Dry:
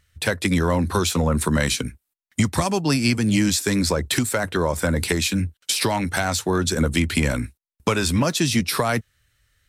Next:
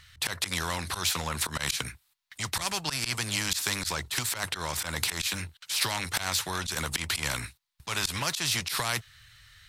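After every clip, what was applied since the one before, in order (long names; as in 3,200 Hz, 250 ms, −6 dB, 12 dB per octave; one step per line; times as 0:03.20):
octave-band graphic EQ 125/250/500/1,000/2,000/4,000 Hz +7/−12/−7/+7/+4/+10 dB
volume swells 102 ms
every bin compressed towards the loudest bin 2 to 1
level −8.5 dB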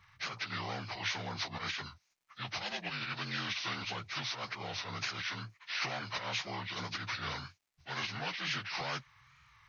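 partials spread apart or drawn together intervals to 79%
tape wow and flutter 87 cents
surface crackle 280 per second −63 dBFS
level −6.5 dB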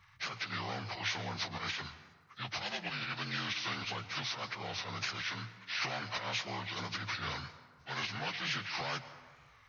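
dense smooth reverb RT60 1.6 s, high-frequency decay 0.5×, pre-delay 105 ms, DRR 13.5 dB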